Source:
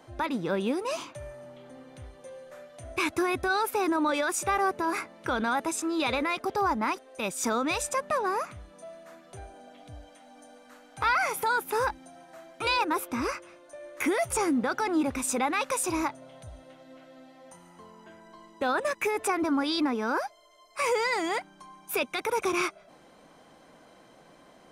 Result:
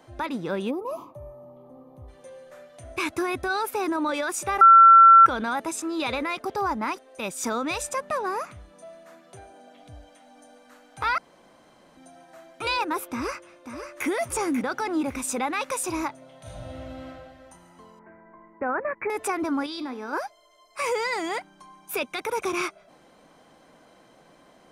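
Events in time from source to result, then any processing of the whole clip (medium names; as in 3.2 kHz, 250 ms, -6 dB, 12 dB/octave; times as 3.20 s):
0.70–2.08 s: time-frequency box 1.3–11 kHz -20 dB
4.61–5.26 s: bleep 1.35 kHz -8 dBFS
9.05–9.76 s: high-pass 74 Hz -> 160 Hz
11.18–11.97 s: room tone
13.10–14.07 s: echo throw 540 ms, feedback 30%, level -8.5 dB
16.38–17.07 s: reverb throw, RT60 2 s, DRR -9 dB
17.99–19.10 s: steep low-pass 2.3 kHz 72 dB/octave
19.66–20.13 s: feedback comb 86 Hz, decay 0.58 s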